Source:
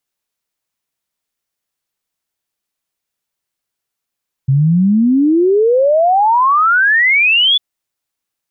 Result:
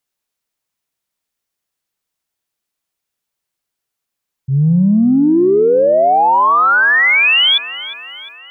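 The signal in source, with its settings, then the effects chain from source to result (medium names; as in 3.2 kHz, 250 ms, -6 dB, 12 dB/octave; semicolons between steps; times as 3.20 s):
log sweep 130 Hz -> 3.5 kHz 3.10 s -8 dBFS
transient shaper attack -7 dB, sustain +12 dB; echo whose repeats swap between lows and highs 177 ms, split 1.1 kHz, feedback 72%, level -13 dB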